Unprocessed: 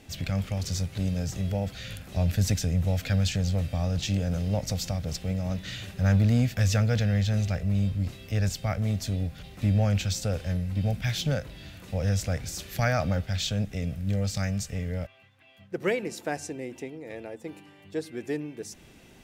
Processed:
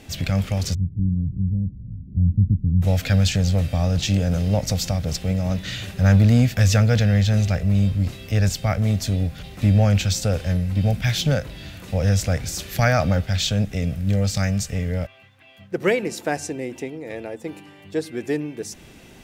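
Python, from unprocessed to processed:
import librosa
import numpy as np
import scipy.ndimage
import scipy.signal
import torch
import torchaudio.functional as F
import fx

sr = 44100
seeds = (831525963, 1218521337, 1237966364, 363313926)

y = fx.cheby2_lowpass(x, sr, hz=1100.0, order=4, stop_db=70, at=(0.73, 2.81), fade=0.02)
y = F.gain(torch.from_numpy(y), 7.0).numpy()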